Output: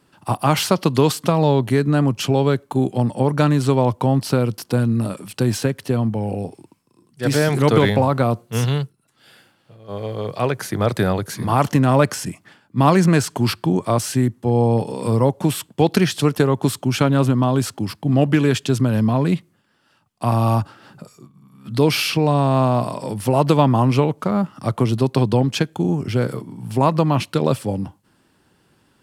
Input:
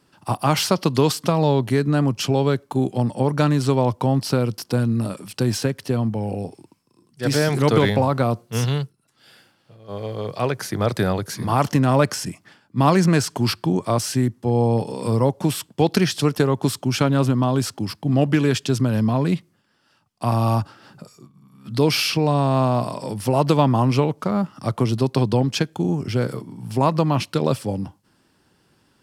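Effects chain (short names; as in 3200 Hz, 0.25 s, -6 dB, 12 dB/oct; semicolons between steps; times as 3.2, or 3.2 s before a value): bell 5200 Hz -5 dB 0.49 oct; gain +2 dB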